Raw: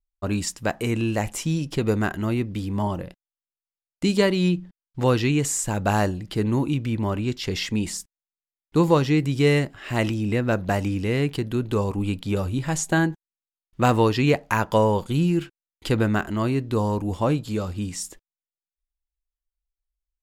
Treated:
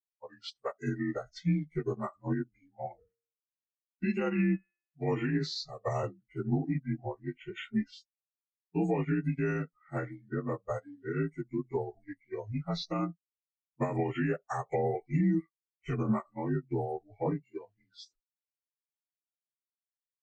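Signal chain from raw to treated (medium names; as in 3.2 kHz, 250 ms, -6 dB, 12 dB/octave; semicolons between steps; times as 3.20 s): frequency axis rescaled in octaves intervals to 84%; spectral noise reduction 26 dB; 3.00–5.59 s: de-hum 115.7 Hz, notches 28; peak limiter -19 dBFS, peak gain reduction 11 dB; upward expansion 2.5:1, over -37 dBFS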